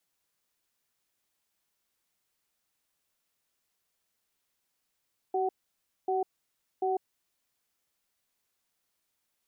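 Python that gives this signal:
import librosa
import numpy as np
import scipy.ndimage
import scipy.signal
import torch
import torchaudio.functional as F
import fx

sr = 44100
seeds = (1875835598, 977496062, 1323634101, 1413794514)

y = fx.cadence(sr, length_s=2.22, low_hz=380.0, high_hz=750.0, on_s=0.15, off_s=0.59, level_db=-28.5)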